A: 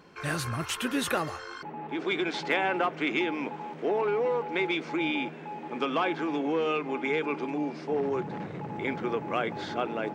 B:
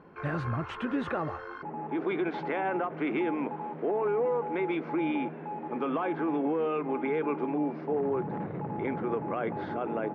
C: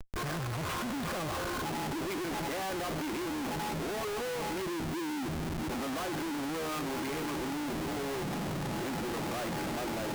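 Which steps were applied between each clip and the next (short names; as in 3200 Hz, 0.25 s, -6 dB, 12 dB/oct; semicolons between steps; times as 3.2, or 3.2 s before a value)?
LPF 1400 Hz 12 dB/oct; limiter -23.5 dBFS, peak gain reduction 7.5 dB; ending taper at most 270 dB/s; gain +2 dB
notch comb 450 Hz; spectral delete 4.63–5.69, 390–2800 Hz; Schmitt trigger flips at -46.5 dBFS; gain -2 dB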